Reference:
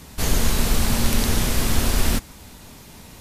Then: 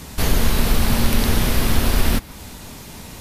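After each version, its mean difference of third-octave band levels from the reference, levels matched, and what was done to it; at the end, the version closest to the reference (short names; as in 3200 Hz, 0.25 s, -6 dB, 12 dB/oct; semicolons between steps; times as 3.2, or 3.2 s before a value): 2.0 dB: dynamic EQ 7300 Hz, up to -7 dB, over -45 dBFS, Q 1.3; in parallel at +0.5 dB: compressor, threshold -24 dBFS, peak gain reduction 12 dB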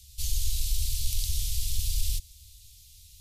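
16.5 dB: inverse Chebyshev band-stop 250–1200 Hz, stop band 60 dB; in parallel at -7 dB: soft clip -16.5 dBFS, distortion -13 dB; on the sum: gain -9 dB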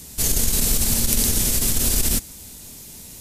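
6.0 dB: EQ curve 420 Hz 0 dB, 1100 Hz -7 dB, 4200 Hz +4 dB, 7800 Hz +12 dB; core saturation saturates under 73 Hz; gain -2 dB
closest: first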